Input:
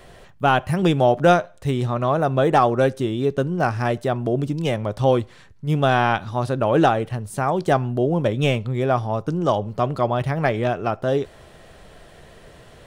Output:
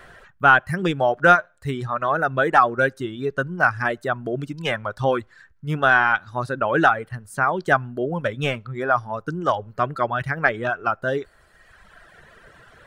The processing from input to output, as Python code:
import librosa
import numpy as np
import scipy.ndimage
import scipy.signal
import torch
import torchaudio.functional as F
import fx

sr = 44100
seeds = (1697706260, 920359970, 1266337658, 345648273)

y = fx.peak_eq(x, sr, hz=1500.0, db=15.0, octaves=0.86)
y = fx.dereverb_blind(y, sr, rt60_s=1.5)
y = fx.dynamic_eq(y, sr, hz=2700.0, q=0.76, threshold_db=-39.0, ratio=4.0, max_db=5, at=(4.32, 4.95))
y = y * librosa.db_to_amplitude(-4.0)